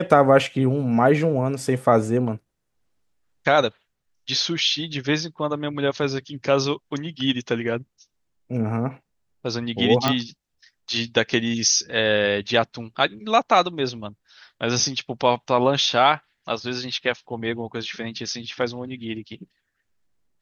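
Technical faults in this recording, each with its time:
10.08 s: pop -6 dBFS

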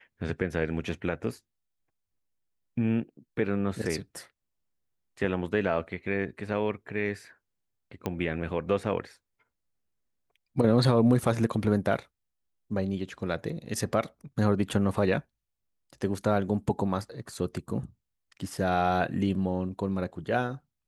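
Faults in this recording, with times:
8.06 s: pop -17 dBFS

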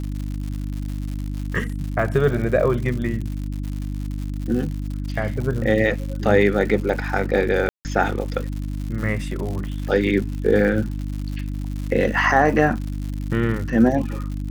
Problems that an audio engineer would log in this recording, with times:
crackle 150 per s -29 dBFS
hum 50 Hz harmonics 6 -27 dBFS
7.69–7.85 s: dropout 159 ms

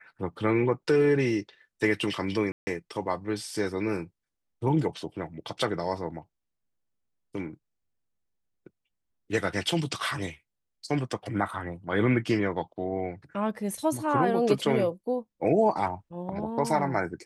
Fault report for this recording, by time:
2.52–2.67 s: dropout 150 ms

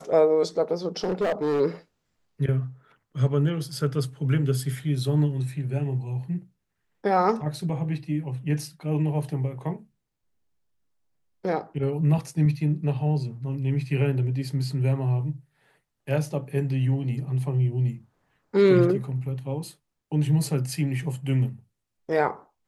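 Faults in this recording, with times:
1.03–1.61 s: clipped -20.5 dBFS

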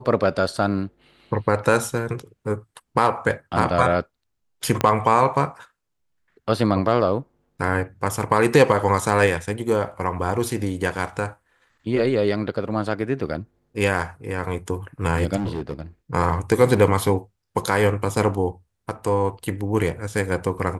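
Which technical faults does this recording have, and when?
4.81 s: pop -6 dBFS
15.36–15.82 s: clipped -22.5 dBFS

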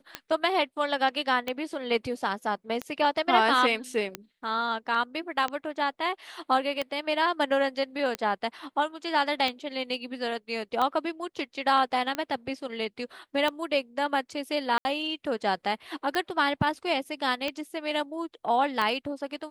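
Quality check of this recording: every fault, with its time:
tick 45 rpm -15 dBFS
14.78–14.85 s: dropout 70 ms

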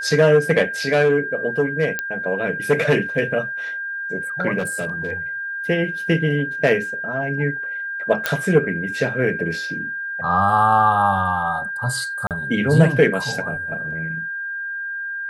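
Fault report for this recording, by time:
whine 1.6 kHz -25 dBFS
1.99 s: pop -8 dBFS
4.58–5.12 s: clipped -19.5 dBFS
8.26 s: pop -4 dBFS
12.27–12.31 s: dropout 38 ms

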